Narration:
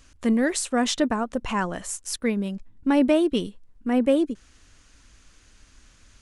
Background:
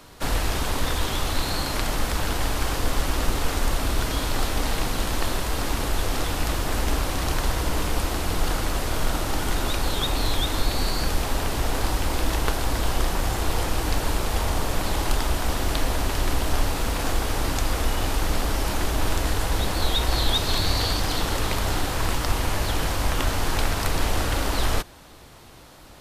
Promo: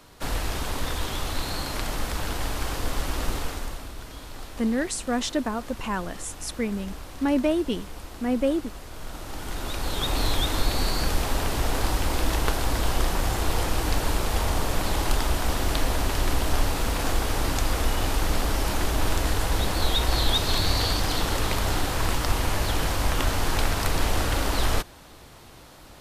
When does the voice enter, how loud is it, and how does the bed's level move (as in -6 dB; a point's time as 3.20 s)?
4.35 s, -3.5 dB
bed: 3.36 s -4 dB
3.93 s -15 dB
8.91 s -15 dB
10.18 s -0.5 dB